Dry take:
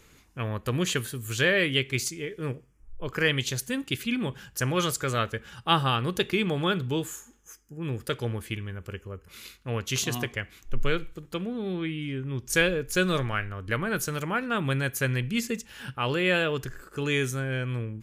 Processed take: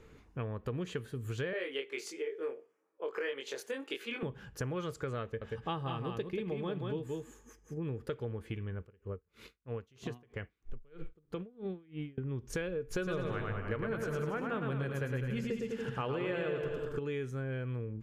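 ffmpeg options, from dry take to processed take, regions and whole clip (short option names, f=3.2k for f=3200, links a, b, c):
-filter_complex "[0:a]asettb=1/sr,asplit=3[a][b][c];[a]atrim=end=1.534[d];[b]atrim=start=1.53:end=4.23,asetpts=PTS-STARTPTS,afade=t=in:d=0.004:c=qsin,afade=t=out:st=2.696:d=0.004:c=qsin,highpass=f=390:w=0.5412,highpass=f=390:w=1.3066,asplit=2[e][f];[f]adelay=22,volume=-2.5dB[g];[e][g]amix=inputs=2:normalize=0,atrim=end_sample=119070[h];[c]atrim=start=4.226[i];[d][h]acrossfade=d=0.004:c1=hsin:c2=qsin[j];[j][i]acrossfade=d=0.004:c1=qsin:c2=hsin,asettb=1/sr,asplit=3[k][l][m];[k]atrim=end=5.234[n];[l]atrim=start=5.23:end=7.86,asetpts=PTS-STARTPTS,afade=t=in:d=0.004:c=qsin,afade=t=out:st=2.626:d=0.004:c=qsin,bandreject=f=1.4k:w=6.5,aecho=1:1:184:0.562,atrim=end_sample=115983[o];[m]atrim=start=7.856[p];[n][o]acrossfade=d=0.004:c1=hsin:c2=qsin[q];[q][p]acrossfade=d=0.004:c1=qsin:c2=hsin,asettb=1/sr,asplit=3[r][s][t];[r]atrim=end=8.794[u];[s]atrim=start=8.79:end=12.18,asetpts=PTS-STARTPTS,afade=t=in:d=0.004:c=qsin,afade=t=out:st=3.386:d=0.004:c=qsin,acompressor=threshold=-29dB:ratio=5:attack=3.2:release=140:knee=1:detection=peak,aeval=exprs='val(0)*pow(10,-30*(0.5-0.5*cos(2*PI*3.1*n/s))/20)':c=same[v];[t]atrim=start=12.176[w];[u][v]acrossfade=d=0.004:c1=hsin:c2=qsin[x];[x][w]acrossfade=d=0.004:c1=qsin:c2=hsin,asettb=1/sr,asplit=3[y][z][aa];[y]atrim=end=12.914[ab];[z]atrim=start=12.91:end=16.99,asetpts=PTS-STARTPTS,afade=t=in:d=0.004:c=qsin,afade=t=out:st=4.076:d=0.004:c=qsin,bandreject=f=60:t=h:w=6,bandreject=f=120:t=h:w=6,bandreject=f=180:t=h:w=6,bandreject=f=240:t=h:w=6,bandreject=f=300:t=h:w=6,acontrast=90,aecho=1:1:110|203.5|283|350.5|407.9:0.631|0.398|0.251|0.158|0.1,atrim=end_sample=179928[ac];[aa]atrim=start=16.986[ad];[ab][ac]acrossfade=d=0.004:c1=hsin:c2=qsin[ae];[ae][ad]acrossfade=d=0.004:c1=qsin:c2=hsin,lowpass=f=1.1k:p=1,equalizer=f=450:t=o:w=0.21:g=7,acompressor=threshold=-36dB:ratio=5,volume=1dB"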